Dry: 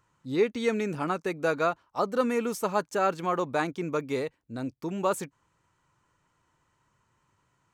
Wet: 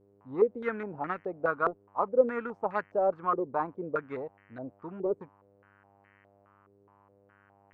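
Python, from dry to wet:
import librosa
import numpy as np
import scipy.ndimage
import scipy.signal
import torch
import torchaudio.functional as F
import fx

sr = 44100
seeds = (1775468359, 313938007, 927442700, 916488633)

y = fx.cheby_harmonics(x, sr, harmonics=(7,), levels_db=(-25,), full_scale_db=-11.5)
y = fx.dmg_buzz(y, sr, base_hz=100.0, harmonics=31, level_db=-60.0, tilt_db=-3, odd_only=False)
y = fx.filter_held_lowpass(y, sr, hz=4.8, low_hz=420.0, high_hz=1900.0)
y = y * librosa.db_to_amplitude(-6.5)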